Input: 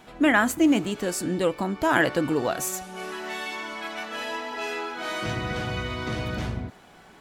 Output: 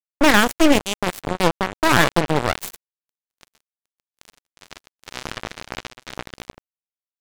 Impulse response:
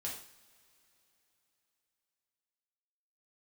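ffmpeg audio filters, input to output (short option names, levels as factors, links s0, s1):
-af "aeval=exprs='0.473*(cos(1*acos(clip(val(0)/0.473,-1,1)))-cos(1*PI/2))+0.211*(cos(4*acos(clip(val(0)/0.473,-1,1)))-cos(4*PI/2))':c=same,acrusher=bits=2:mix=0:aa=0.5,volume=1.26"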